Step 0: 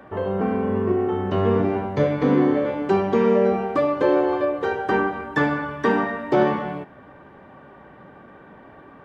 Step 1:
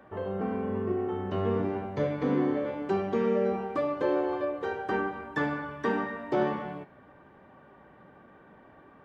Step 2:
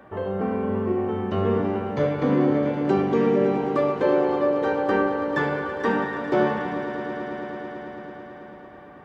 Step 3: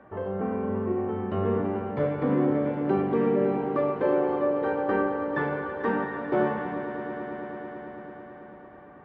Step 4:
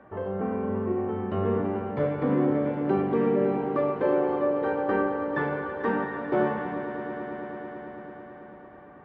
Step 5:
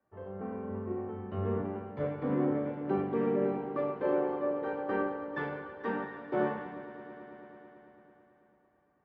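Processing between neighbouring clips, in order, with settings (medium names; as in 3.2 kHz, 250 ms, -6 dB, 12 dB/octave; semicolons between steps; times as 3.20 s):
de-hum 138.8 Hz, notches 35; trim -8.5 dB
echo with a slow build-up 110 ms, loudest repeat 5, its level -14.5 dB; trim +5.5 dB
low-pass 2.2 kHz 12 dB/octave; trim -3.5 dB
no audible change
three bands expanded up and down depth 70%; trim -7 dB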